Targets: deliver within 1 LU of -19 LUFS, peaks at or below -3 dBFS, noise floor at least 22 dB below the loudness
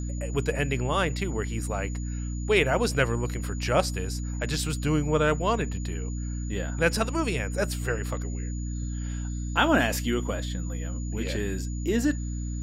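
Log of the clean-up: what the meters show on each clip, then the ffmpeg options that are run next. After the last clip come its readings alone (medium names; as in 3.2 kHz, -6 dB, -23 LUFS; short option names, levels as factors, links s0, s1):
hum 60 Hz; highest harmonic 300 Hz; hum level -29 dBFS; steady tone 6.9 kHz; tone level -45 dBFS; loudness -28.0 LUFS; peak level -7.5 dBFS; loudness target -19.0 LUFS
-> -af "bandreject=f=60:t=h:w=4,bandreject=f=120:t=h:w=4,bandreject=f=180:t=h:w=4,bandreject=f=240:t=h:w=4,bandreject=f=300:t=h:w=4"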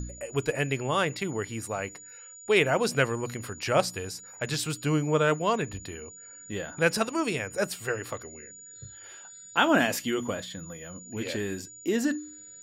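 hum not found; steady tone 6.9 kHz; tone level -45 dBFS
-> -af "bandreject=f=6900:w=30"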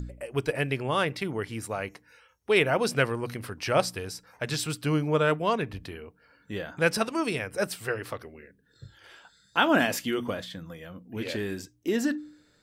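steady tone not found; loudness -28.5 LUFS; peak level -8.0 dBFS; loudness target -19.0 LUFS
-> -af "volume=2.99,alimiter=limit=0.708:level=0:latency=1"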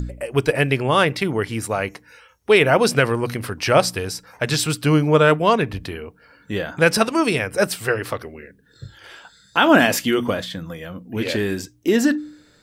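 loudness -19.5 LUFS; peak level -3.0 dBFS; noise floor -55 dBFS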